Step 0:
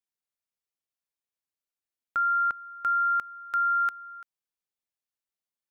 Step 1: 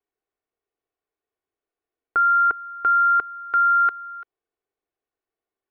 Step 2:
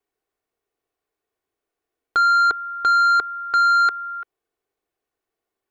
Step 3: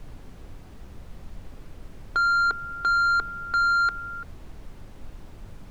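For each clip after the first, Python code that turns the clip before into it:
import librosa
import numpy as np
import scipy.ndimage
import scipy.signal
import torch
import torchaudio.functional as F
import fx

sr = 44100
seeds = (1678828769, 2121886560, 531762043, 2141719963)

y1 = scipy.signal.sosfilt(scipy.signal.butter(2, 1900.0, 'lowpass', fs=sr, output='sos'), x)
y1 = fx.peak_eq(y1, sr, hz=450.0, db=10.5, octaves=1.0)
y1 = y1 + 0.53 * np.pad(y1, (int(2.7 * sr / 1000.0), 0))[:len(y1)]
y1 = y1 * 10.0 ** (6.5 / 20.0)
y2 = 10.0 ** (-18.5 / 20.0) * np.tanh(y1 / 10.0 ** (-18.5 / 20.0))
y2 = y2 * 10.0 ** (5.5 / 20.0)
y3 = fx.dmg_noise_colour(y2, sr, seeds[0], colour='brown', level_db=-34.0)
y3 = y3 * 10.0 ** (-5.5 / 20.0)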